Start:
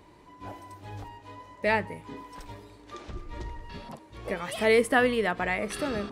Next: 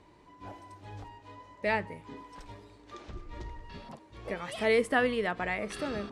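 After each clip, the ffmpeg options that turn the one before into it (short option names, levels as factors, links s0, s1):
-af "lowpass=8600,volume=0.631"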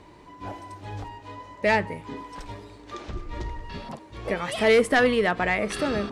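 -af "aeval=exprs='0.237*sin(PI/2*1.78*val(0)/0.237)':c=same"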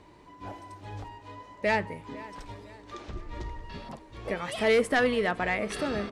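-filter_complex "[0:a]asplit=2[s0][s1];[s1]adelay=505,lowpass=f=4500:p=1,volume=0.106,asplit=2[s2][s3];[s3]adelay=505,lowpass=f=4500:p=1,volume=0.48,asplit=2[s4][s5];[s5]adelay=505,lowpass=f=4500:p=1,volume=0.48,asplit=2[s6][s7];[s7]adelay=505,lowpass=f=4500:p=1,volume=0.48[s8];[s0][s2][s4][s6][s8]amix=inputs=5:normalize=0,volume=0.596"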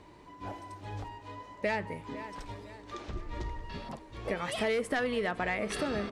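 -af "acompressor=threshold=0.0447:ratio=10"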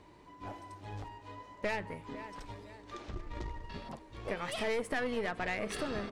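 -af "aeval=exprs='(tanh(17.8*val(0)+0.65)-tanh(0.65))/17.8':c=same"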